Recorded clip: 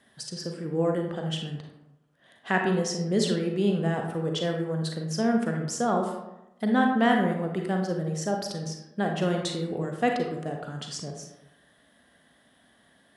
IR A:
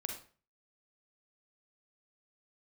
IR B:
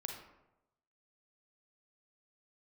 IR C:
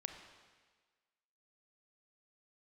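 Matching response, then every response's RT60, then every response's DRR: B; 0.40, 0.95, 1.5 seconds; 2.0, 2.0, 5.0 decibels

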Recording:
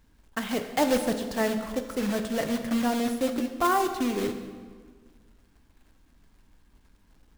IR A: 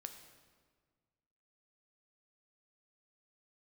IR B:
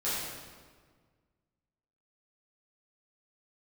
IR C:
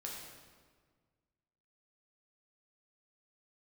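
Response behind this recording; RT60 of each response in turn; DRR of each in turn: A; 1.6, 1.6, 1.6 seconds; 6.0, −12.0, −3.0 decibels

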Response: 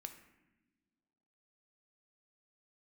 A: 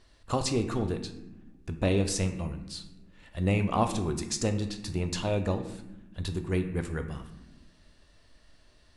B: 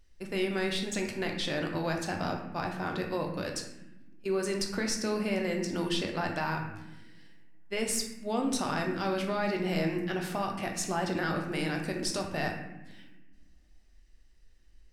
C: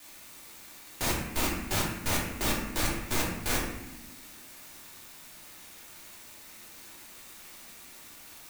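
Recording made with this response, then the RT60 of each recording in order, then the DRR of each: A; non-exponential decay, non-exponential decay, non-exponential decay; 6.0, 1.0, −4.0 decibels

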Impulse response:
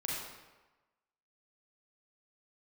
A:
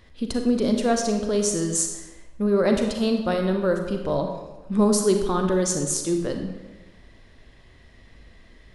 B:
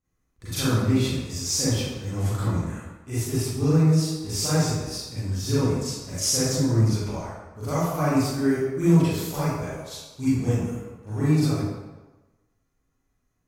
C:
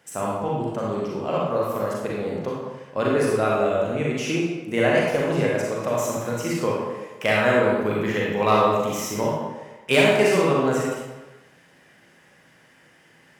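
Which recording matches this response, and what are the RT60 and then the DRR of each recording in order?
C; 1.2, 1.2, 1.2 seconds; 3.5, −13.0, −5.0 decibels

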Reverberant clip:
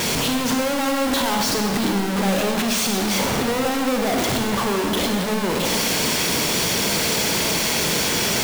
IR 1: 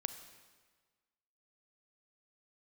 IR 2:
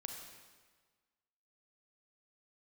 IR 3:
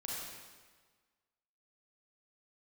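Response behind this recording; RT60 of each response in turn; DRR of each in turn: 2; 1.5, 1.5, 1.5 seconds; 9.5, 2.5, −5.0 decibels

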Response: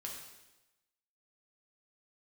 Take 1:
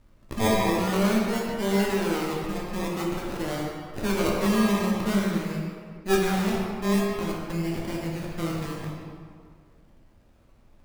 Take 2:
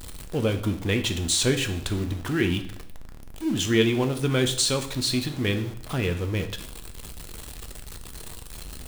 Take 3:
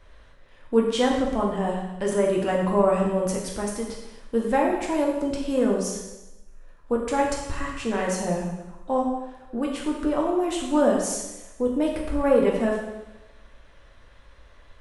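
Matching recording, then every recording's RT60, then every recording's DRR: 3; 2.0, 0.65, 1.0 seconds; −3.5, 6.5, −2.0 decibels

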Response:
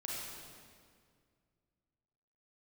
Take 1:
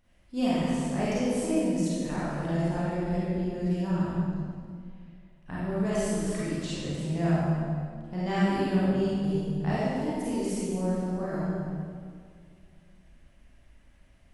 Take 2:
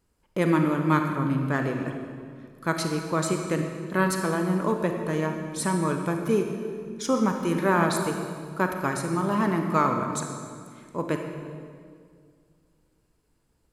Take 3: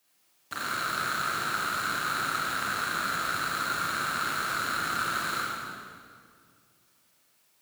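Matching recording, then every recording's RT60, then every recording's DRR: 3; 2.0, 2.1, 2.0 seconds; −10.0, 3.5, −5.0 decibels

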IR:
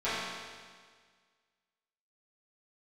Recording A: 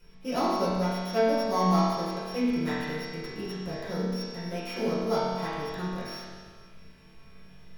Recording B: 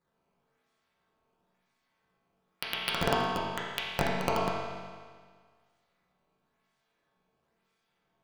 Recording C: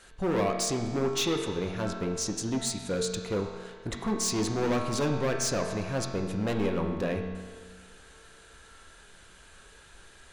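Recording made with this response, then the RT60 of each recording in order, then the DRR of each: A; 1.7, 1.7, 1.7 seconds; −15.0, −7.5, 1.5 decibels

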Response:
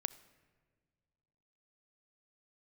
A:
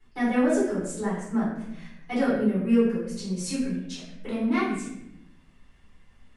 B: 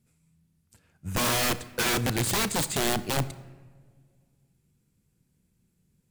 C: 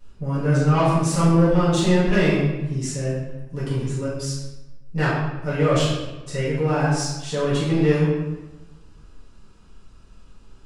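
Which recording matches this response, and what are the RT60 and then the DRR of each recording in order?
B; 0.80 s, non-exponential decay, 1.1 s; −10.5, 14.5, −11.0 decibels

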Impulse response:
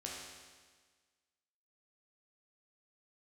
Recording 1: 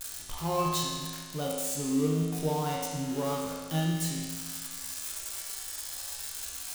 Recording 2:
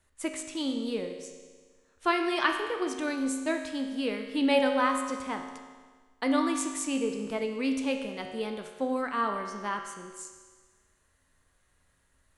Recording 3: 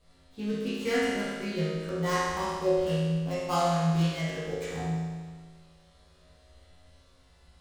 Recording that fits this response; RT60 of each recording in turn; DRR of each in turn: 1; 1.5, 1.5, 1.5 seconds; −4.0, 3.5, −12.0 decibels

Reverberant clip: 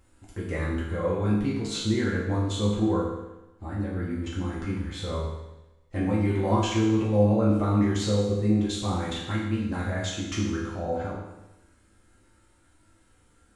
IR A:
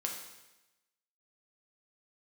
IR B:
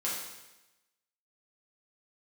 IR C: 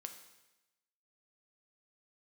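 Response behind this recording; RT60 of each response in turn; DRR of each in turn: B; 1.0, 1.0, 1.0 seconds; −0.5, −7.5, 5.5 decibels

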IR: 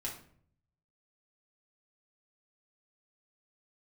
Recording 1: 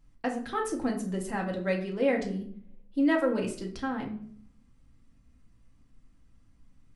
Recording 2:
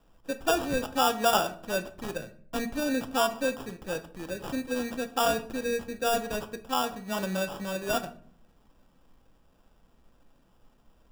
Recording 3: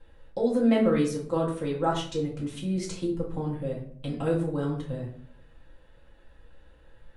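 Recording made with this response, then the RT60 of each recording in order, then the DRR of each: 3; 0.55, 0.60, 0.55 seconds; 0.0, 7.5, −4.5 decibels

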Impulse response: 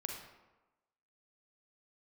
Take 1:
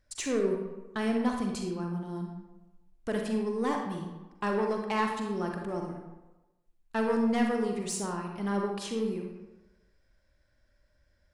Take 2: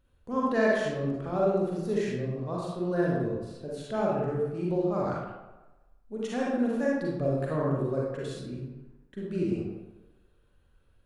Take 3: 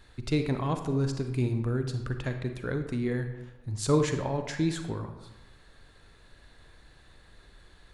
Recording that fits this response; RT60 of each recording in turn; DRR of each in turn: 1; 1.1, 1.1, 1.1 seconds; 1.5, −5.0, 6.5 decibels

